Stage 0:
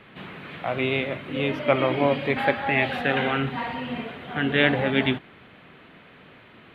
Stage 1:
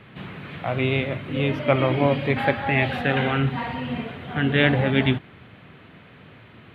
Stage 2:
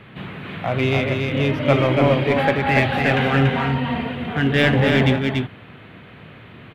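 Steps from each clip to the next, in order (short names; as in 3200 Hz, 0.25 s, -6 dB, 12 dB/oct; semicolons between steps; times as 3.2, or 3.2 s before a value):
bell 100 Hz +10.5 dB 1.5 oct
in parallel at -3 dB: hard clip -18.5 dBFS, distortion -8 dB; on the sum: echo 0.285 s -4 dB; gain -1 dB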